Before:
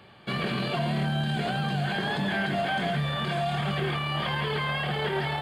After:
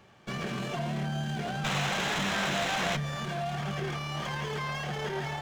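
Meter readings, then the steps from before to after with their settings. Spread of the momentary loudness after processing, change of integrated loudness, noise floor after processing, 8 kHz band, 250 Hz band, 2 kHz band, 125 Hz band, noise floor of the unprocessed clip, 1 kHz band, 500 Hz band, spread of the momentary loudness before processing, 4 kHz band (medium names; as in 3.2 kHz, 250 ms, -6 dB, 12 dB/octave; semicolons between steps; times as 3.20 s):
6 LU, -3.5 dB, -43 dBFS, +10.5 dB, -5.0 dB, -3.0 dB, -5.0 dB, -38 dBFS, -3.5 dB, -4.5 dB, 1 LU, -3.0 dB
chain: painted sound noise, 1.64–2.97 s, 480–4200 Hz -26 dBFS; sliding maximum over 5 samples; trim -5 dB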